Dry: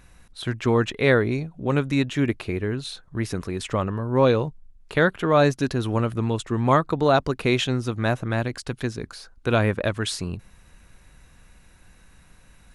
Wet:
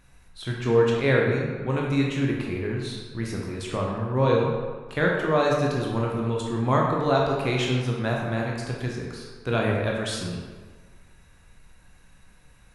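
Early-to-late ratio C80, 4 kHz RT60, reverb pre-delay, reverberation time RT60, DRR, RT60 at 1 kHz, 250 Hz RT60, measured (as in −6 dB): 3.5 dB, 0.95 s, 14 ms, 1.5 s, −2.0 dB, 1.5 s, 1.4 s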